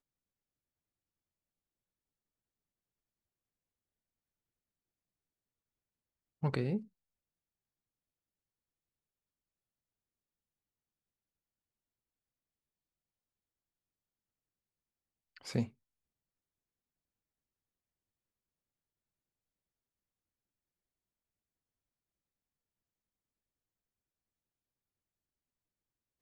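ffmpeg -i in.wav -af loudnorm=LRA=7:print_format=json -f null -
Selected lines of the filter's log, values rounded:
"input_i" : "-37.3",
"input_tp" : "-16.1",
"input_lra" : "3.4",
"input_thresh" : "-48.2",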